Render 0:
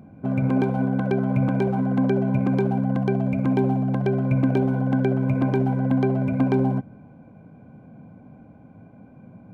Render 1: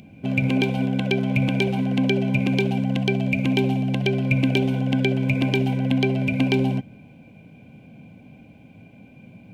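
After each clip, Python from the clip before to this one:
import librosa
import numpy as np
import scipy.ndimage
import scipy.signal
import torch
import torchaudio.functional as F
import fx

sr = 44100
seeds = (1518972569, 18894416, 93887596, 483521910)

y = fx.high_shelf_res(x, sr, hz=1900.0, db=13.0, q=3.0)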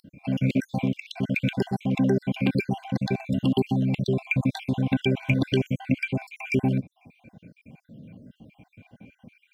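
y = fx.spec_dropout(x, sr, seeds[0], share_pct=59)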